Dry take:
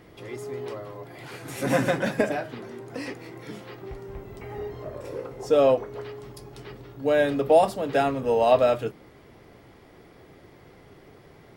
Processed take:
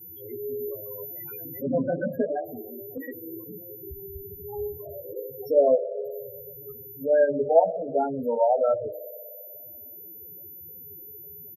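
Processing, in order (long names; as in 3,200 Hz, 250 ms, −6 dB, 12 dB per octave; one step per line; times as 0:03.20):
steady tone 14,000 Hz −44 dBFS
delay with a band-pass on its return 61 ms, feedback 84%, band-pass 630 Hz, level −16 dB
spectral peaks only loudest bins 8
0:00.59–0:02.04: high-shelf EQ 2,200 Hz +6 dB
double-tracking delay 12 ms −3 dB
hum removal 160.7 Hz, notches 5
0:02.97–0:03.44: multiband upward and downward compressor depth 70%
level −1.5 dB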